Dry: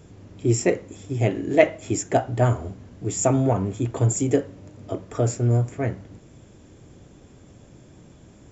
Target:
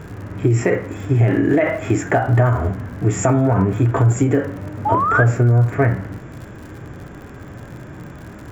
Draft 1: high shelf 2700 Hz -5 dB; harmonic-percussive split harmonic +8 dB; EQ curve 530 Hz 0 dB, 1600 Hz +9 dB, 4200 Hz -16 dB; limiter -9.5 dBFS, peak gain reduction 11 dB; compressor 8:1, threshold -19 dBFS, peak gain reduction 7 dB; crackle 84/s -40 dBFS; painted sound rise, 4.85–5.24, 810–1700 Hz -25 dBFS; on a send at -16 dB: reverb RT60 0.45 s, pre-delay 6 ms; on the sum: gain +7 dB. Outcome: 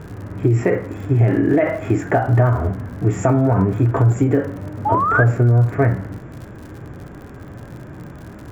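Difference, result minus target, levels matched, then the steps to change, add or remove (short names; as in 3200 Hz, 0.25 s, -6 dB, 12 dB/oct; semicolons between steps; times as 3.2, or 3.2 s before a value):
4000 Hz band -5.0 dB
change: high shelf 2700 Hz +5.5 dB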